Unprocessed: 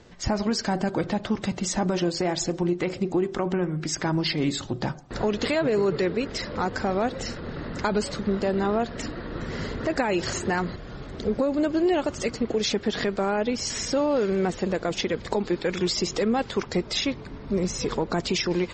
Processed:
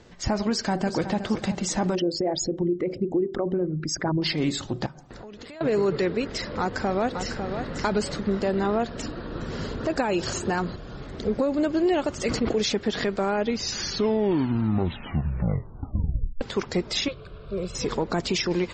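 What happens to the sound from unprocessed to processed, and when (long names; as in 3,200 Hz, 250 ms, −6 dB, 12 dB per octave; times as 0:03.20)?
0:00.49–0:01.20: delay throw 370 ms, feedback 45%, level −10.5 dB
0:01.95–0:04.22: spectral envelope exaggerated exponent 2
0:04.86–0:05.61: downward compressor 16 to 1, threshold −38 dBFS
0:06.59–0:07.65: delay throw 550 ms, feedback 10%, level −7 dB
0:08.90–0:10.98: parametric band 2,000 Hz −8.5 dB 0.28 octaves
0:12.17–0:12.63: level that may fall only so fast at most 50 dB per second
0:13.36: tape stop 3.05 s
0:17.08–0:17.75: phaser with its sweep stopped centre 1,300 Hz, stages 8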